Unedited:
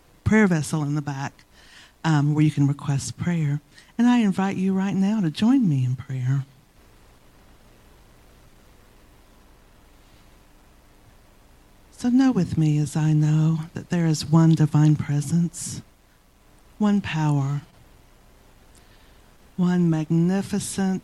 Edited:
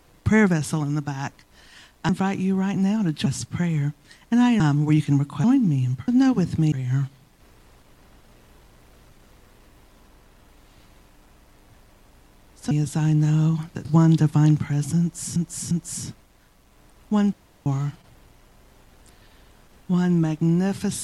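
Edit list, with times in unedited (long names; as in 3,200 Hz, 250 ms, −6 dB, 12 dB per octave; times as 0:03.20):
0:02.09–0:02.93: swap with 0:04.27–0:05.44
0:12.07–0:12.71: move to 0:06.08
0:13.85–0:14.24: remove
0:15.40–0:15.75: repeat, 3 plays
0:17.02–0:17.35: fill with room tone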